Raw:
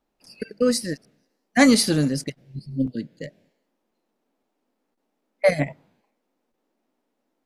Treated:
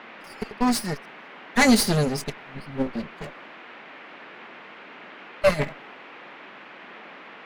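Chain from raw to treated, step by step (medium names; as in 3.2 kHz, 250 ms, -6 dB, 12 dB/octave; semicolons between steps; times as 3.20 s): comb filter that takes the minimum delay 4.9 ms; band noise 190–2500 Hz -44 dBFS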